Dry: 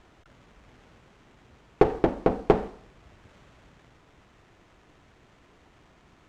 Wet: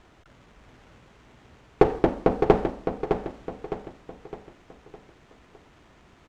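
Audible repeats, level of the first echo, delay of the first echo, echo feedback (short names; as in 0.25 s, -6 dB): 4, -7.0 dB, 0.61 s, 43%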